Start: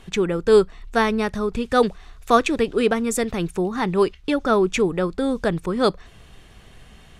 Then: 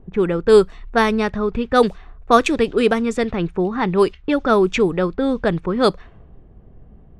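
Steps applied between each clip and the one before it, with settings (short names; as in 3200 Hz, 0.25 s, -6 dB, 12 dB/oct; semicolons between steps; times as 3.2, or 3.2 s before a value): low-pass opened by the level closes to 430 Hz, open at -14.5 dBFS; gain +3 dB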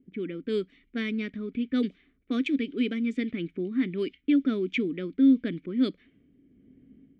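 AGC gain up to 8 dB; vowel filter i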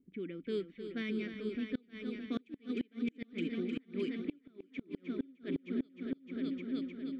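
multi-head echo 0.307 s, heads all three, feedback 56%, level -9.5 dB; flipped gate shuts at -17 dBFS, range -31 dB; gain -8 dB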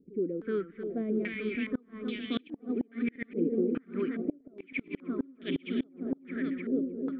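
pre-echo 69 ms -20 dB; stepped low-pass 2.4 Hz 490–3100 Hz; gain +4 dB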